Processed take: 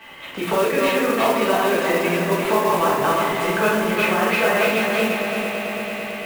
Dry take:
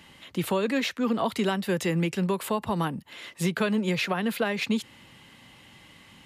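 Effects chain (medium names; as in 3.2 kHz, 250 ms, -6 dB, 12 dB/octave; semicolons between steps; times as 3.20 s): backward echo that repeats 174 ms, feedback 56%, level -1.5 dB; compression, threshold -27 dBFS, peak gain reduction 8.5 dB; three-band isolator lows -16 dB, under 430 Hz, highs -17 dB, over 2.8 kHz; on a send: echo with a slow build-up 111 ms, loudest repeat 5, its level -15 dB; on the sum: simulated room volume 89 m³, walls mixed, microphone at 1.6 m; modulation noise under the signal 17 dB; trim +8.5 dB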